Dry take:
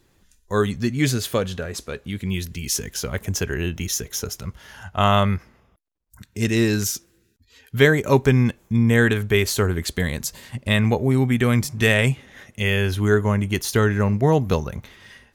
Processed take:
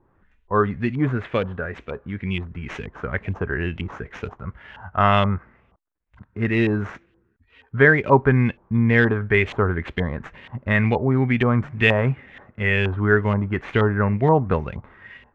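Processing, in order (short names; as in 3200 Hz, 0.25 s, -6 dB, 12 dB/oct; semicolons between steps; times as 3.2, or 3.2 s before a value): median filter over 9 samples; LFO low-pass saw up 2.1 Hz 900–3000 Hz; gain -1 dB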